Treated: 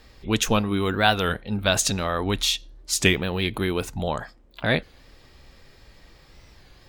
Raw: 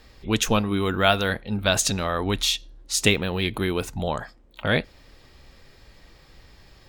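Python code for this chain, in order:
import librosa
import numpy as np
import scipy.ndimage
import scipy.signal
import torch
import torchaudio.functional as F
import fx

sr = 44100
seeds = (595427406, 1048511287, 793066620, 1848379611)

y = fx.record_warp(x, sr, rpm=33.33, depth_cents=160.0)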